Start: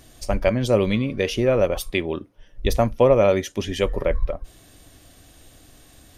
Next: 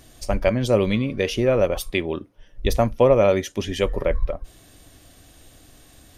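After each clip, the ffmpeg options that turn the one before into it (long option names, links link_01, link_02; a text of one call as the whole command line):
ffmpeg -i in.wav -af anull out.wav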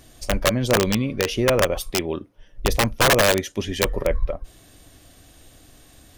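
ffmpeg -i in.wav -af "aeval=exprs='(mod(3.35*val(0)+1,2)-1)/3.35':channel_layout=same" out.wav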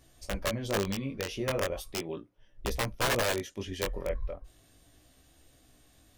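ffmpeg -i in.wav -af "flanger=delay=15:depth=7.6:speed=0.37,volume=-8.5dB" out.wav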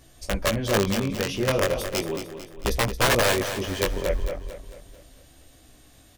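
ffmpeg -i in.wav -af "aecho=1:1:223|446|669|892|1115:0.335|0.157|0.074|0.0348|0.0163,volume=7.5dB" out.wav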